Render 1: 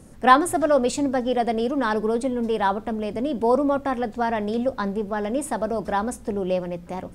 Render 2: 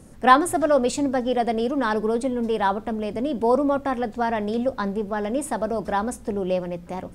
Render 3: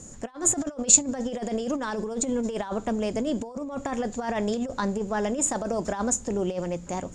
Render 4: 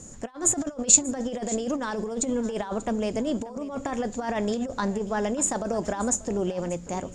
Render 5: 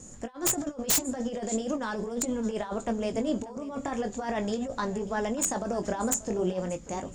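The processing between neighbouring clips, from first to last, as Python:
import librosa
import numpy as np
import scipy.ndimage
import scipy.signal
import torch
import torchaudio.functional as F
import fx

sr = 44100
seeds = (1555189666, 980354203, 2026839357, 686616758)

y1 = x
y2 = fx.over_compress(y1, sr, threshold_db=-25.0, ratio=-0.5)
y2 = fx.lowpass_res(y2, sr, hz=7000.0, q=16.0)
y2 = F.gain(torch.from_numpy(y2), -3.0).numpy()
y3 = y2 + 10.0 ** (-18.0 / 20.0) * np.pad(y2, (int(587 * sr / 1000.0), 0))[:len(y2)]
y4 = fx.chorus_voices(y3, sr, voices=2, hz=0.4, base_ms=20, depth_ms=3.0, mix_pct=30)
y4 = (np.mod(10.0 ** (16.5 / 20.0) * y4 + 1.0, 2.0) - 1.0) / 10.0 ** (16.5 / 20.0)
y4 = fx.wow_flutter(y4, sr, seeds[0], rate_hz=2.1, depth_cents=27.0)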